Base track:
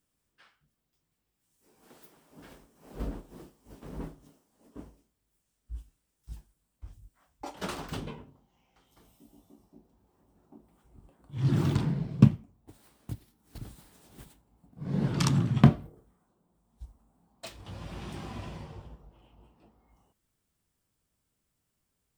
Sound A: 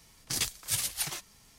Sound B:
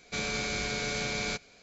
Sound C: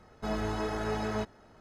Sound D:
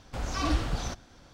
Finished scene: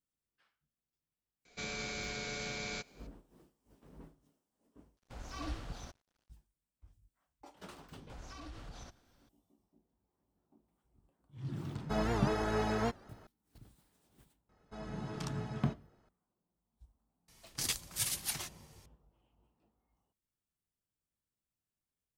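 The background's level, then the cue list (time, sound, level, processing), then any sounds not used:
base track -15 dB
1.45 s: add B -8 dB
4.97 s: replace with D -13 dB + crossover distortion -49.5 dBFS
7.96 s: add D -15 dB + peak limiter -25 dBFS
11.67 s: add C -0.5 dB + warped record 78 rpm, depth 160 cents
14.49 s: add C -13.5 dB + low-pass 11 kHz 24 dB/octave
17.28 s: add A -4.5 dB

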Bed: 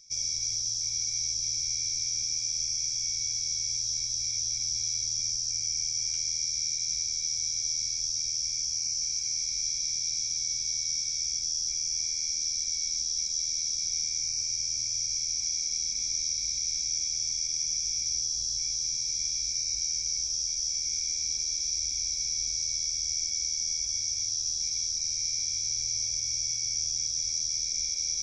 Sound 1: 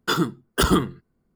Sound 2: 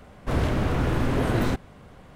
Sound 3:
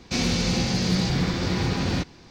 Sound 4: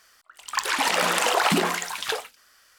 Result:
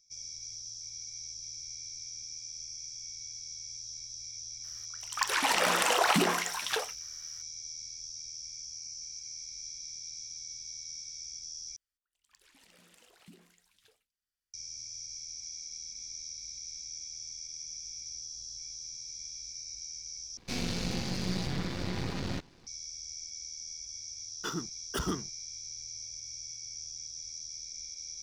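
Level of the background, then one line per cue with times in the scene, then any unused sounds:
bed -12.5 dB
4.64 s: add 4 -4.5 dB
11.76 s: replace with 4 -14 dB + amplifier tone stack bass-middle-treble 10-0-1
20.37 s: replace with 3 -7 dB + partial rectifier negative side -12 dB
24.36 s: add 1 -14.5 dB + hysteresis with a dead band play -34.5 dBFS
not used: 2

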